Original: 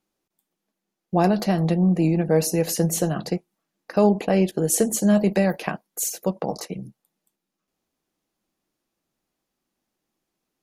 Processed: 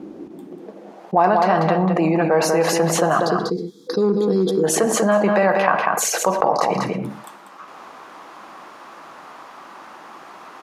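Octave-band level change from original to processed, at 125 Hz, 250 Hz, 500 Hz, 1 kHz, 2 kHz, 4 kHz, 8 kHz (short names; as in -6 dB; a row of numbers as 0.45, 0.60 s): -2.0, 0.0, +6.0, +11.5, +10.5, +6.0, +2.5 dB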